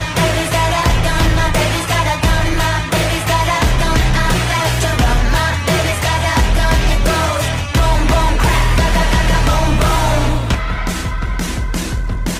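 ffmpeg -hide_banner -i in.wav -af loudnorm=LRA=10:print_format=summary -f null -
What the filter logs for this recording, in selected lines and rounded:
Input Integrated:    -15.7 LUFS
Input True Peak:      -4.6 dBTP
Input LRA:             3.0 LU
Input Threshold:     -25.7 LUFS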